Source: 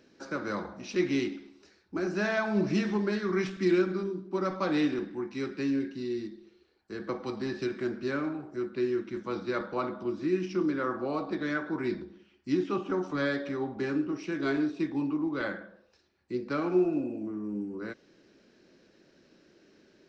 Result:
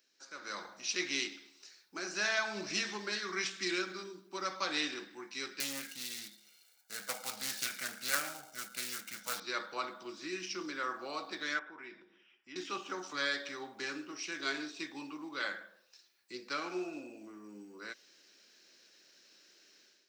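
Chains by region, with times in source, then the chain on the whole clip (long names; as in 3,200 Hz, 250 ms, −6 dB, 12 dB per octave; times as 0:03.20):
0:05.60–0:09.40: gap after every zero crossing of 0.087 ms + comb filter 1.4 ms, depth 87% + highs frequency-modulated by the lows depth 0.3 ms
0:11.59–0:12.56: Savitzky-Golay smoothing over 25 samples + low-shelf EQ 180 Hz −7.5 dB + downward compressor 1.5 to 1, threshold −49 dBFS
whole clip: first difference; automatic gain control gain up to 12 dB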